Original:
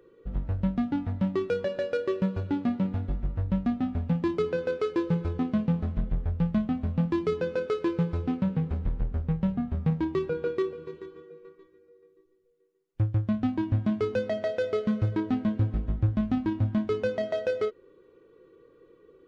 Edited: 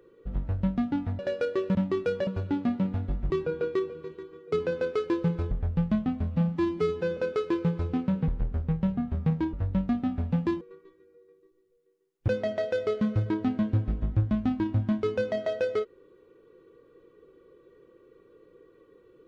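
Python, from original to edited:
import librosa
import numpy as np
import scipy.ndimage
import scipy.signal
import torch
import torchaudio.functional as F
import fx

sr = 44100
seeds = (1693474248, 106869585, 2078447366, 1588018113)

y = fx.edit(x, sr, fx.move(start_s=1.19, length_s=0.52, to_s=2.27),
    fx.swap(start_s=3.3, length_s=1.08, other_s=10.13, other_length_s=1.22),
    fx.cut(start_s=5.37, length_s=0.77),
    fx.stretch_span(start_s=6.93, length_s=0.58, factor=1.5),
    fx.cut(start_s=8.62, length_s=0.26),
    fx.cut(start_s=13.02, length_s=1.12), tone=tone)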